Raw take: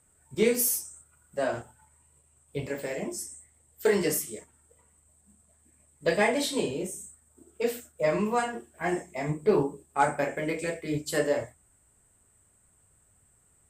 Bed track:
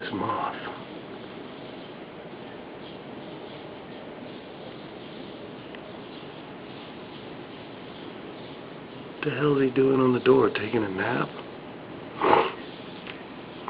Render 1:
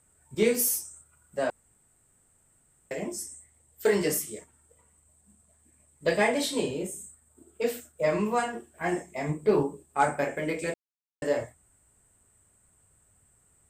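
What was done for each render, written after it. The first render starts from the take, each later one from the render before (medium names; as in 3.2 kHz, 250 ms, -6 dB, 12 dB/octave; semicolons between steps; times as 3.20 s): 1.50–2.91 s: room tone; 6.79–7.62 s: band-stop 5.8 kHz, Q 5.5; 10.74–11.22 s: mute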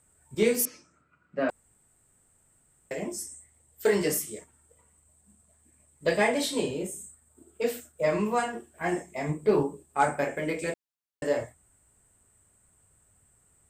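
0.65–1.49 s: cabinet simulation 140–3900 Hz, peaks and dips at 170 Hz +7 dB, 280 Hz +8 dB, 850 Hz -7 dB, 1.3 kHz +6 dB, 2.4 kHz +5 dB, 3.4 kHz -8 dB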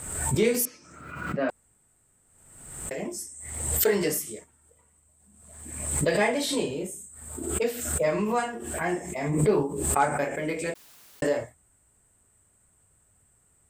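swell ahead of each attack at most 49 dB/s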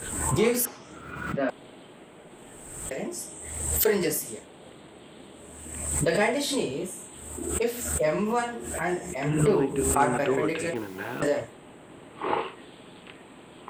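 add bed track -8 dB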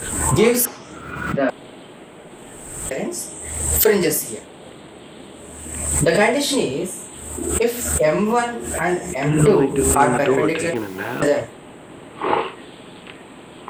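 trim +8 dB; peak limiter -3 dBFS, peak gain reduction 2 dB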